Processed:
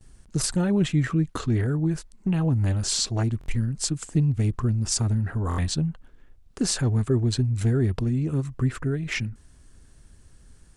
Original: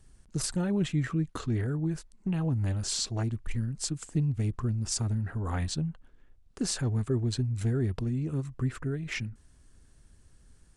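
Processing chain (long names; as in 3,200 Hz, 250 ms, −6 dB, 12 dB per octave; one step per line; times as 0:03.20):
noise gate with hold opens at −55 dBFS
buffer that repeats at 0:03.39/0:05.49, samples 1,024, times 3
level +6 dB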